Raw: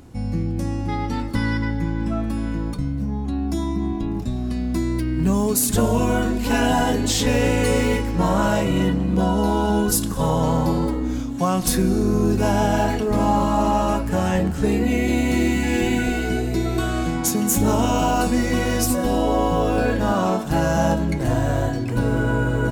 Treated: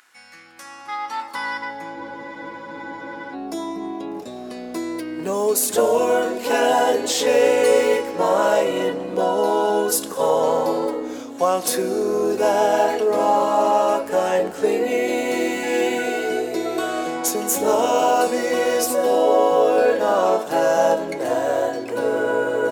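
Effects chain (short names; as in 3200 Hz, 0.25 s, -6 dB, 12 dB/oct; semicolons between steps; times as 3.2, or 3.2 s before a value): high-pass sweep 1600 Hz -> 480 Hz, 0.31–2.45; spectral freeze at 1.97, 1.37 s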